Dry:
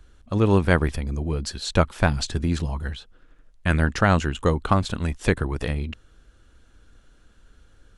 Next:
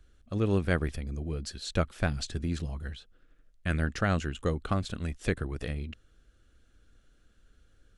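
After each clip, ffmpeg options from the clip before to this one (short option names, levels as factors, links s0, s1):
-af "equalizer=f=940:w=3.5:g=-10,volume=0.398"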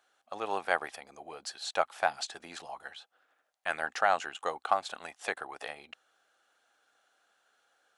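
-af "highpass=f=800:t=q:w=4.9"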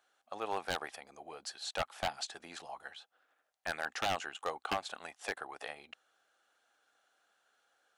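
-af "aeval=exprs='0.0841*(abs(mod(val(0)/0.0841+3,4)-2)-1)':c=same,volume=0.708"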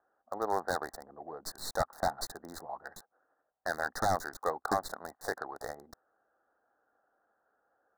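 -filter_complex "[0:a]acrossover=split=2400[s0][s1];[s0]adynamicsmooth=sensitivity=3.5:basefreq=1200[s2];[s1]acrusher=bits=5:dc=4:mix=0:aa=0.000001[s3];[s2][s3]amix=inputs=2:normalize=0,asuperstop=centerf=2700:order=12:qfactor=1.5,volume=2"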